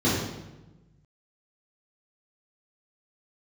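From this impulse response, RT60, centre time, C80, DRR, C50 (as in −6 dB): 1.1 s, 74 ms, 3.0 dB, −10.0 dB, 0.0 dB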